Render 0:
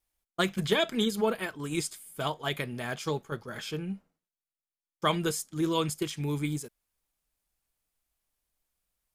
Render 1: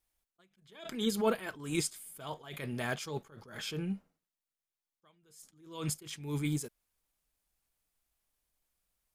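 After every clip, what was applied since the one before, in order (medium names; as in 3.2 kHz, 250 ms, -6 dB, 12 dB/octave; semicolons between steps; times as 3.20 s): attacks held to a fixed rise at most 100 dB/s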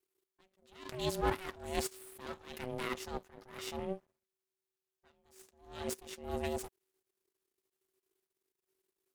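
half-wave rectifier; ring modulator 380 Hz; trim +3 dB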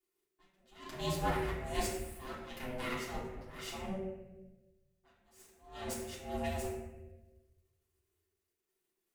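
reverberation RT60 1.1 s, pre-delay 3 ms, DRR -7.5 dB; trim -7 dB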